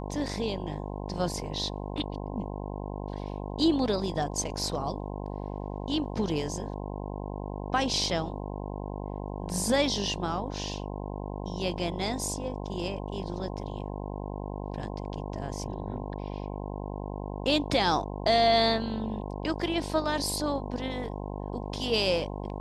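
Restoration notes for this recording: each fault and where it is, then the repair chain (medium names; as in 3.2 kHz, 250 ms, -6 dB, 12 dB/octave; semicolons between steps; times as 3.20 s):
buzz 50 Hz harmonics 21 -36 dBFS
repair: de-hum 50 Hz, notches 21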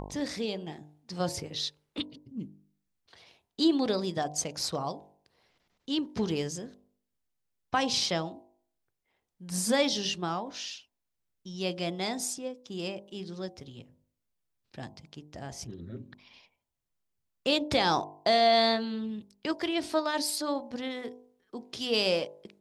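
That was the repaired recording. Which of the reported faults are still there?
nothing left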